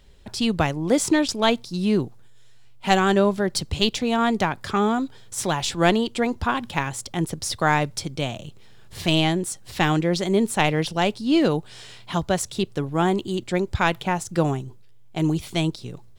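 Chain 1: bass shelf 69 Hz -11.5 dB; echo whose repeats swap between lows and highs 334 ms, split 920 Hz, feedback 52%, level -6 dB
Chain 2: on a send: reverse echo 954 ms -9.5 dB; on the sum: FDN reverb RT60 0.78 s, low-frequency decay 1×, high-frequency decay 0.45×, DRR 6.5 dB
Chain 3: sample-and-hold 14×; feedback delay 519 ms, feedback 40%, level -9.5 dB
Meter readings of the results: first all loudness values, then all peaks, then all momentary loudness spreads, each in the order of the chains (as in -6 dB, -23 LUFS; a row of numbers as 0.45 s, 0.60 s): -23.0 LUFS, -21.5 LUFS, -23.0 LUFS; -3.5 dBFS, -4.5 dBFS, -5.0 dBFS; 8 LU, 10 LU, 10 LU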